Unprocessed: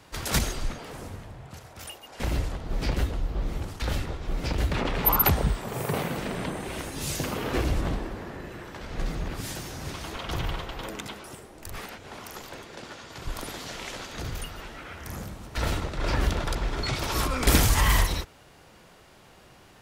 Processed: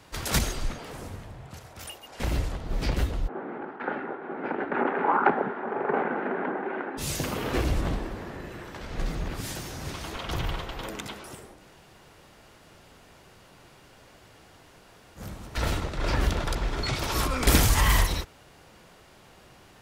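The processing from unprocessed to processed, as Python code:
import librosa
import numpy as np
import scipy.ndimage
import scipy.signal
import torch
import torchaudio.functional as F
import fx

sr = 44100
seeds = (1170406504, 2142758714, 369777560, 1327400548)

y = fx.cabinet(x, sr, low_hz=230.0, low_slope=24, high_hz=2000.0, hz=(240.0, 390.0, 820.0, 1500.0), db=(4, 7, 8, 9), at=(3.27, 6.97), fade=0.02)
y = fx.edit(y, sr, fx.room_tone_fill(start_s=11.57, length_s=3.63, crossfade_s=0.1), tone=tone)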